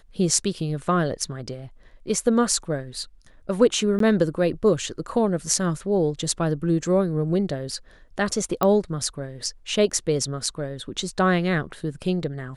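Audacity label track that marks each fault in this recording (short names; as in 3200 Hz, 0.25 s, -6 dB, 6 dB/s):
3.990000	4.000000	gap 13 ms
8.630000	8.630000	pop -8 dBFS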